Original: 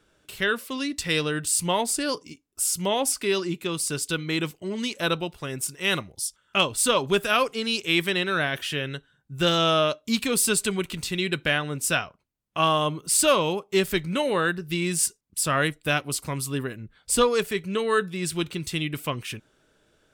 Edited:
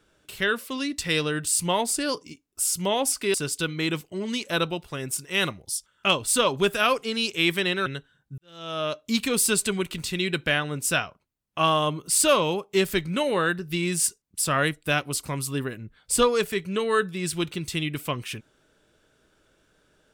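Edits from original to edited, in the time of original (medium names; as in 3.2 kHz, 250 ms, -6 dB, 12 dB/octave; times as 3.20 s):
3.34–3.84 s: delete
8.36–8.85 s: delete
9.37–10.02 s: fade in quadratic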